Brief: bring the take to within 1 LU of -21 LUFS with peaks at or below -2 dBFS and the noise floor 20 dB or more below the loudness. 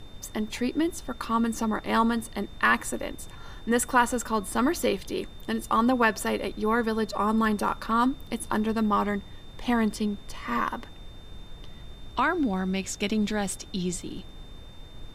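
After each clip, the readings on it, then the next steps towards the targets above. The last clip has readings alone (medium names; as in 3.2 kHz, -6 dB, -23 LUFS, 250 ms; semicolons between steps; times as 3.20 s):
steady tone 3.6 kHz; tone level -53 dBFS; noise floor -45 dBFS; noise floor target -47 dBFS; loudness -27.0 LUFS; peak level -9.0 dBFS; loudness target -21.0 LUFS
-> band-stop 3.6 kHz, Q 30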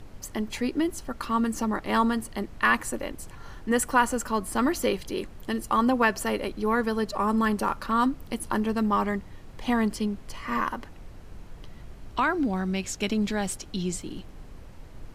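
steady tone not found; noise floor -45 dBFS; noise floor target -47 dBFS
-> noise print and reduce 6 dB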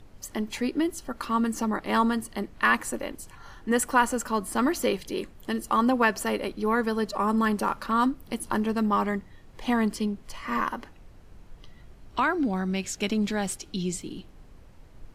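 noise floor -50 dBFS; loudness -27.0 LUFS; peak level -8.5 dBFS; loudness target -21.0 LUFS
-> trim +6 dB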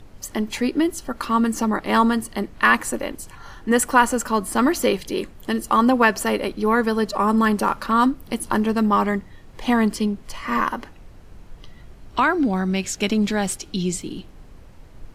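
loudness -21.0 LUFS; peak level -2.5 dBFS; noise floor -44 dBFS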